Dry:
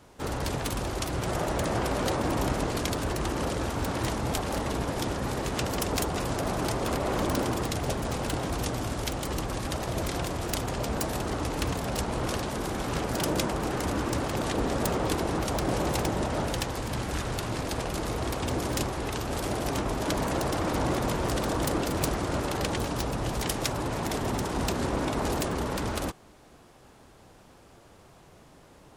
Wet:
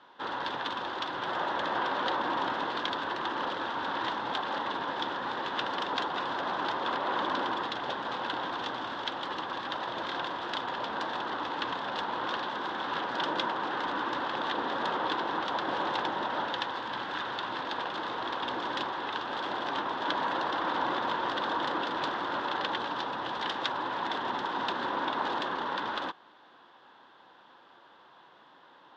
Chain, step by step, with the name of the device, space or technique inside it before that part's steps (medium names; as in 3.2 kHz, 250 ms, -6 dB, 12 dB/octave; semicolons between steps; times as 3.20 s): phone earpiece (cabinet simulation 420–3700 Hz, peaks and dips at 430 Hz -6 dB, 640 Hz -6 dB, 970 Hz +7 dB, 1.6 kHz +6 dB, 2.3 kHz -8 dB, 3.5 kHz +8 dB)